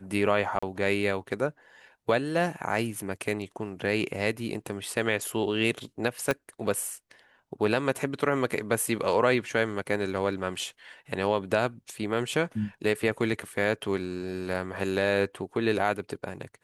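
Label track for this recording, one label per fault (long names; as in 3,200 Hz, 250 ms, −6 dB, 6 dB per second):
0.590000	0.620000	drop-out 35 ms
6.310000	6.310000	click −12 dBFS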